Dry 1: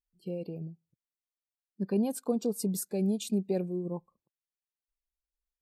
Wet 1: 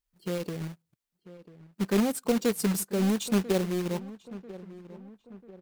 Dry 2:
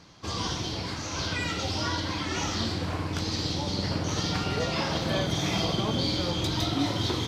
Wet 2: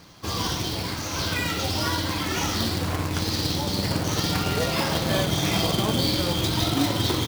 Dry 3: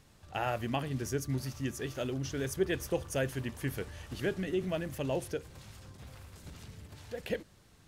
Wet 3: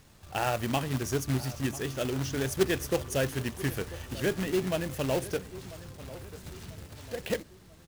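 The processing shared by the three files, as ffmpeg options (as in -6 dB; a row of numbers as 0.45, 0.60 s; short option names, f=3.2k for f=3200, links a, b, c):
-filter_complex "[0:a]acrusher=bits=2:mode=log:mix=0:aa=0.000001,asplit=2[a][b];[b]adelay=992,lowpass=f=1.8k:p=1,volume=-16.5dB,asplit=2[c][d];[d]adelay=992,lowpass=f=1.8k:p=1,volume=0.48,asplit=2[e][f];[f]adelay=992,lowpass=f=1.8k:p=1,volume=0.48,asplit=2[g][h];[h]adelay=992,lowpass=f=1.8k:p=1,volume=0.48[i];[a][c][e][g][i]amix=inputs=5:normalize=0,volume=3.5dB"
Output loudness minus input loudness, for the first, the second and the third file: +4.0, +4.0, +4.5 LU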